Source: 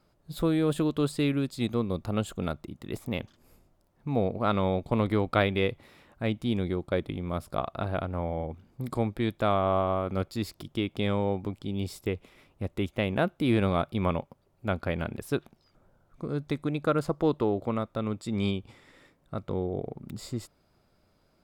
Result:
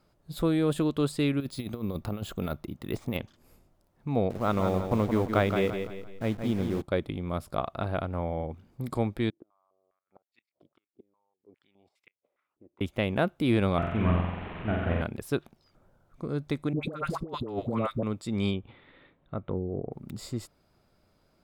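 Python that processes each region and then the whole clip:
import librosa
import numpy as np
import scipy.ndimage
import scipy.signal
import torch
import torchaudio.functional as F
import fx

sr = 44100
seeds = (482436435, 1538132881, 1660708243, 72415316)

y = fx.chain(x, sr, fx.over_compress(threshold_db=-31.0, ratio=-0.5),
    fx.resample_bad(factor=3, down='filtered', up='hold'), at=(1.4, 3.17))
y = fx.chain(y, sr, fx.delta_hold(step_db=-37.0),
    fx.high_shelf(hz=2500.0, db=-8.5),
    fx.echo_feedback(ms=170, feedback_pct=39, wet_db=-7), at=(4.3, 6.82))
y = fx.chain(y, sr, fx.level_steps(step_db=14),
    fx.gate_flip(shuts_db=-28.0, range_db=-36),
    fx.filter_held_bandpass(hz=4.9, low_hz=330.0, high_hz=2300.0), at=(9.3, 12.81))
y = fx.chain(y, sr, fx.delta_mod(bps=16000, step_db=-35.5),
    fx.notch(hz=560.0, q=8.6),
    fx.room_flutter(wall_m=7.8, rt60_s=0.89), at=(13.78, 15.02))
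y = fx.chain(y, sr, fx.dispersion(late='highs', ms=90.0, hz=780.0),
    fx.over_compress(threshold_db=-30.0, ratio=-0.5), at=(16.73, 18.03))
y = fx.chain(y, sr, fx.steep_lowpass(hz=4000.0, slope=72),
    fx.env_lowpass_down(base_hz=360.0, full_db=-25.5), at=(18.54, 19.93))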